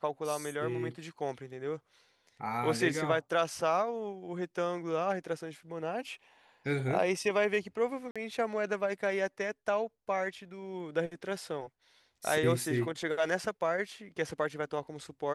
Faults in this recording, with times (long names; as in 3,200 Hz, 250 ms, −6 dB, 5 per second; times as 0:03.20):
0:08.11–0:08.16: drop-out 46 ms